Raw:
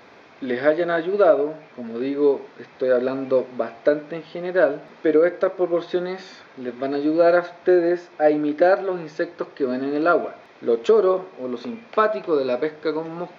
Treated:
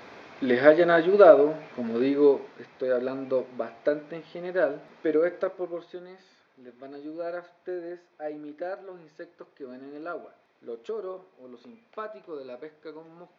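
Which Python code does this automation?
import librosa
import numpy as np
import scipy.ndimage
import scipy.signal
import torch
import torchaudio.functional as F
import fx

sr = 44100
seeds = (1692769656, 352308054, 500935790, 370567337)

y = fx.gain(x, sr, db=fx.line((1.98, 1.5), (2.83, -7.0), (5.4, -7.0), (5.99, -18.0)))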